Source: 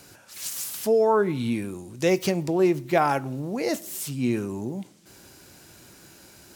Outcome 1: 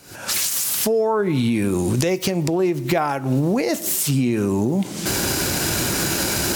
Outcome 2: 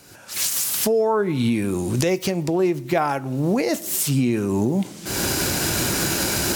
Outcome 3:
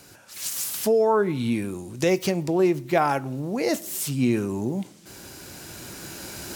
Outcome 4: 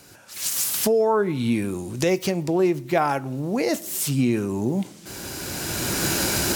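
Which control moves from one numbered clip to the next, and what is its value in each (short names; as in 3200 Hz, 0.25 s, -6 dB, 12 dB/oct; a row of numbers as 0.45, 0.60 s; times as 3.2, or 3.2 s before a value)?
recorder AGC, rising by: 90, 37, 5.2, 14 dB/s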